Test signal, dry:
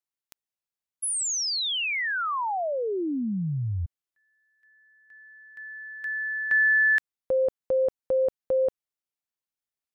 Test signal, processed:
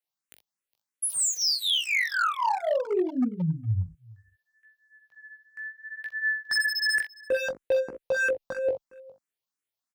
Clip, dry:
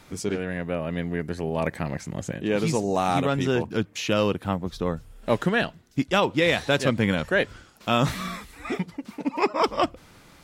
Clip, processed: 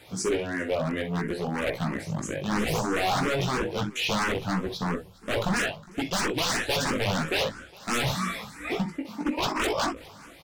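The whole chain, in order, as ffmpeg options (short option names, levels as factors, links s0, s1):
-filter_complex "[0:a]highpass=f=110:p=1,flanger=delay=16:depth=4.3:speed=0.63,asplit=2[s0][s1];[s1]aecho=0:1:44|63:0.316|0.266[s2];[s0][s2]amix=inputs=2:normalize=0,aeval=exprs='0.0531*(abs(mod(val(0)/0.0531+3,4)-2)-1)':c=same,asplit=2[s3][s4];[s4]aecho=0:1:411:0.0708[s5];[s3][s5]amix=inputs=2:normalize=0,asplit=2[s6][s7];[s7]afreqshift=3[s8];[s6][s8]amix=inputs=2:normalize=1,volume=2.37"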